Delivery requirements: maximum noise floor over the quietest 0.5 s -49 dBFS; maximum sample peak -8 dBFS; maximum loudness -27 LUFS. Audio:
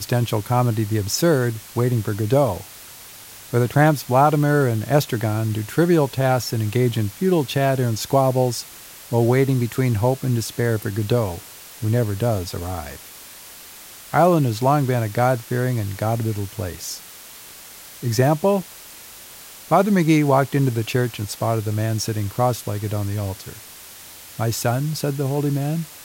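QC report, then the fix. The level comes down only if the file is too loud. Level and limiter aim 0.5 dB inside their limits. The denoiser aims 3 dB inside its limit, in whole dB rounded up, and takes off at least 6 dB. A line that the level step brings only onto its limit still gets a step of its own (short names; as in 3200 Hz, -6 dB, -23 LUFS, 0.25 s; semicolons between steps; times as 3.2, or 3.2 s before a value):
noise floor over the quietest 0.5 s -41 dBFS: fail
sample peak -4.0 dBFS: fail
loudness -21.0 LUFS: fail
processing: denoiser 6 dB, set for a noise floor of -41 dBFS; gain -6.5 dB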